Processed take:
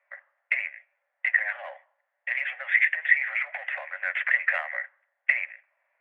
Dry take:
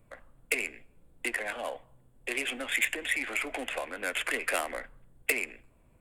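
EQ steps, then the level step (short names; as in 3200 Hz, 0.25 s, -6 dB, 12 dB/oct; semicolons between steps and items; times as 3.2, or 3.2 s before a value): rippled Chebyshev high-pass 550 Hz, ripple 3 dB; synth low-pass 1900 Hz, resonance Q 6.7; -3.5 dB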